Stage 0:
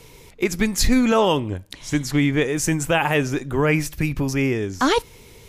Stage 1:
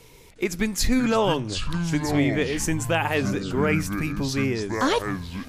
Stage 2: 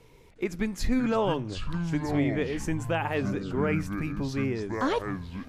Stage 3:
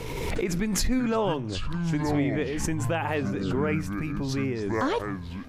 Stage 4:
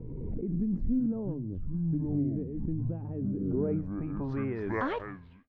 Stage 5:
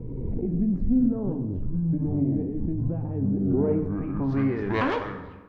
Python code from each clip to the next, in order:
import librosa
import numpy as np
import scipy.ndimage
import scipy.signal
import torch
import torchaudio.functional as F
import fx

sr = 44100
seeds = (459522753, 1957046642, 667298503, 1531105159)

y1 = fx.hum_notches(x, sr, base_hz=50, count=3)
y1 = fx.echo_pitch(y1, sr, ms=358, semitones=-7, count=2, db_per_echo=-6.0)
y1 = y1 * 10.0 ** (-4.0 / 20.0)
y2 = fx.high_shelf(y1, sr, hz=3300.0, db=-12.0)
y2 = y2 * 10.0 ** (-4.0 / 20.0)
y3 = fx.pre_swell(y2, sr, db_per_s=26.0)
y4 = fx.fade_out_tail(y3, sr, length_s=0.73)
y4 = fx.filter_sweep_lowpass(y4, sr, from_hz=250.0, to_hz=2300.0, start_s=3.28, end_s=4.79, q=1.3)
y4 = y4 * 10.0 ** (-4.5 / 20.0)
y5 = fx.self_delay(y4, sr, depth_ms=0.12)
y5 = fx.rev_plate(y5, sr, seeds[0], rt60_s=1.2, hf_ratio=0.65, predelay_ms=0, drr_db=5.5)
y5 = y5 * 10.0 ** (5.5 / 20.0)